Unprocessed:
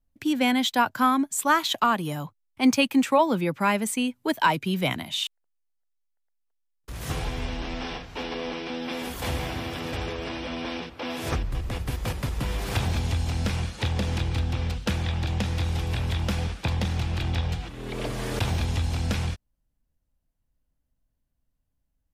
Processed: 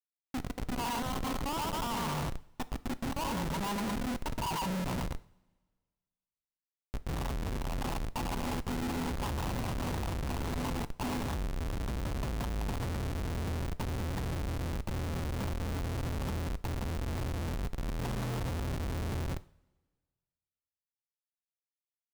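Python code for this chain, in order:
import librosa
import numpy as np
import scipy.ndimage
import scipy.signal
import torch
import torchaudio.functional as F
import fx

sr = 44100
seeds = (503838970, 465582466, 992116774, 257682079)

p1 = fx.high_shelf(x, sr, hz=11000.0, db=3.0)
p2 = fx.notch(p1, sr, hz=420.0, q=12.0)
p3 = fx.comb_fb(p2, sr, f0_hz=120.0, decay_s=1.4, harmonics='all', damping=0.0, mix_pct=60)
p4 = p3 + fx.echo_feedback(p3, sr, ms=113, feedback_pct=55, wet_db=-10, dry=0)
p5 = fx.over_compress(p4, sr, threshold_db=-35.0, ratio=-1.0)
p6 = fx.curve_eq(p5, sr, hz=(230.0, 490.0, 910.0, 1700.0, 5800.0), db=(0, -13, 12, -7, -26))
p7 = fx.schmitt(p6, sr, flips_db=-34.5)
p8 = fx.rev_double_slope(p7, sr, seeds[0], early_s=0.45, late_s=1.6, knee_db=-18, drr_db=14.0)
y = p8 * librosa.db_to_amplitude(2.5)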